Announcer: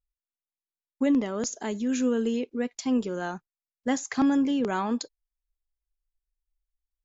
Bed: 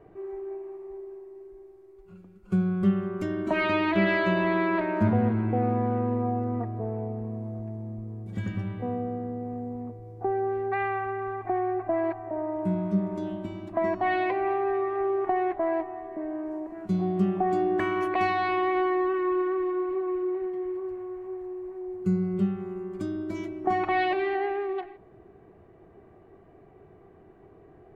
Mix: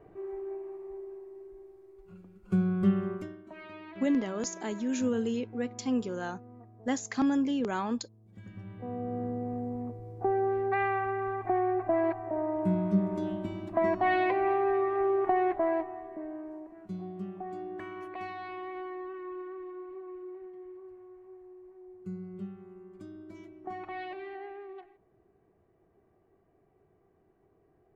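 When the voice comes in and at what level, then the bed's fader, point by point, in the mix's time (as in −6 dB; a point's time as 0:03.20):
3.00 s, −4.0 dB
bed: 0:03.12 −2 dB
0:03.42 −21.5 dB
0:08.20 −21.5 dB
0:09.22 −0.5 dB
0:15.57 −0.5 dB
0:17.20 −14.5 dB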